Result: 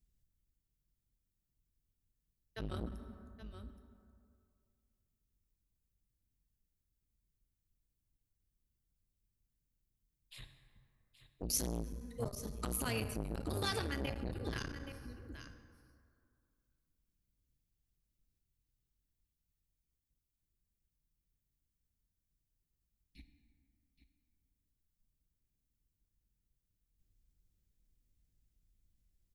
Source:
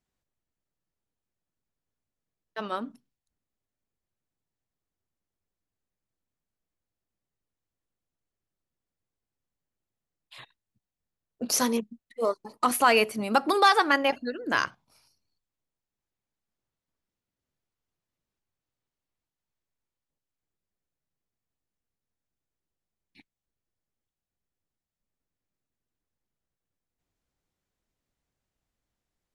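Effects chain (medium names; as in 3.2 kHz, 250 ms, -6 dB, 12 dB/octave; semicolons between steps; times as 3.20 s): octave divider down 2 oct, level -4 dB; amplifier tone stack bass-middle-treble 10-0-1; compression, threshold -48 dBFS, peak gain reduction 11 dB; treble shelf 10 kHz +10 dB; on a send: delay 824 ms -13.5 dB; on the sum: plate-style reverb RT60 2.3 s, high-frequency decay 0.45×, DRR 7.5 dB; transformer saturation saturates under 690 Hz; trim +16.5 dB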